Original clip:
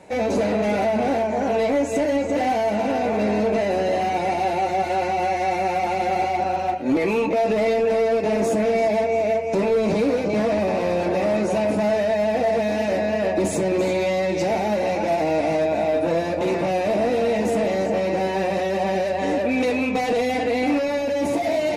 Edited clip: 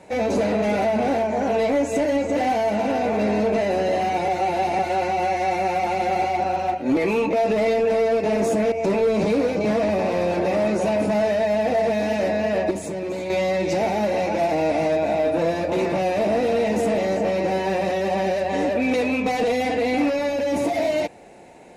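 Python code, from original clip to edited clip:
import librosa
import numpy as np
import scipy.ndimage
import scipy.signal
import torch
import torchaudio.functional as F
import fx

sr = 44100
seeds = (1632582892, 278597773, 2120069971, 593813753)

y = fx.edit(x, sr, fx.reverse_span(start_s=4.28, length_s=0.51),
    fx.cut(start_s=8.72, length_s=0.69),
    fx.clip_gain(start_s=13.4, length_s=0.59, db=-7.0), tone=tone)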